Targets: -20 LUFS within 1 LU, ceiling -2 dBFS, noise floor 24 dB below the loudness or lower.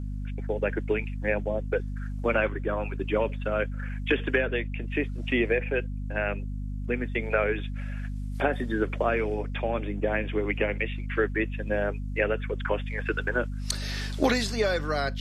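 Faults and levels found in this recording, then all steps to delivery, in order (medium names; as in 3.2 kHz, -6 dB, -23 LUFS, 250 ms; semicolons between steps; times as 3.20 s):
hum 50 Hz; highest harmonic 250 Hz; hum level -30 dBFS; loudness -29.0 LUFS; peak level -10.0 dBFS; loudness target -20.0 LUFS
-> hum notches 50/100/150/200/250 Hz; trim +9 dB; peak limiter -2 dBFS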